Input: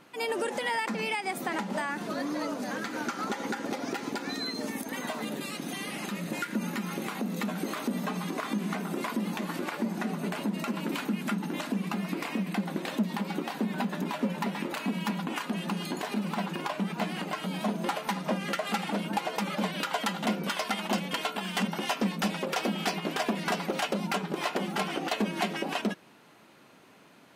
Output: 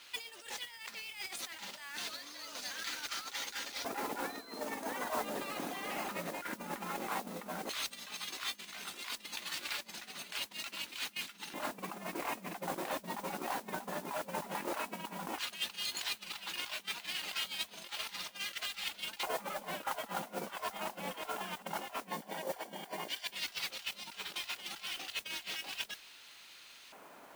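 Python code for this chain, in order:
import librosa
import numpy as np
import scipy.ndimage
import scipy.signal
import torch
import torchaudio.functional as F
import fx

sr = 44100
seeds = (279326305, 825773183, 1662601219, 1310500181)

y = fx.high_shelf(x, sr, hz=2800.0, db=8.0)
y = fx.over_compress(y, sr, threshold_db=-35.0, ratio=-0.5)
y = fx.filter_lfo_bandpass(y, sr, shape='square', hz=0.13, low_hz=800.0, high_hz=3900.0, q=1.1)
y = fx.mod_noise(y, sr, seeds[0], snr_db=10)
y = fx.notch_comb(y, sr, f0_hz=1300.0, at=(22.1, 23.33))
y = y * 10.0 ** (1.0 / 20.0)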